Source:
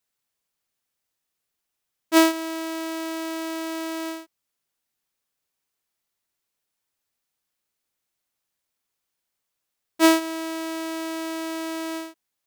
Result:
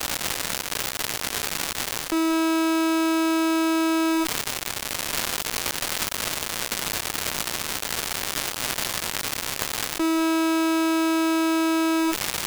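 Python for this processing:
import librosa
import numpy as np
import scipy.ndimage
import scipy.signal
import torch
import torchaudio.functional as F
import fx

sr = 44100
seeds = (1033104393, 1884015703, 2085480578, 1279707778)

p1 = scipy.signal.sosfilt(scipy.signal.butter(4, 40.0, 'highpass', fs=sr, output='sos'), x)
p2 = fx.low_shelf(p1, sr, hz=440.0, db=6.0)
p3 = p2 + 0.69 * np.pad(p2, (int(2.3 * sr / 1000.0), 0))[:len(p2)]
p4 = fx.fuzz(p3, sr, gain_db=35.0, gate_db=-40.0)
p5 = p3 + F.gain(torch.from_numpy(p4), -5.5).numpy()
p6 = fx.dmg_crackle(p5, sr, seeds[0], per_s=320.0, level_db=-35.0)
p7 = fx.env_flatten(p6, sr, amount_pct=100)
y = F.gain(torch.from_numpy(p7), -15.0).numpy()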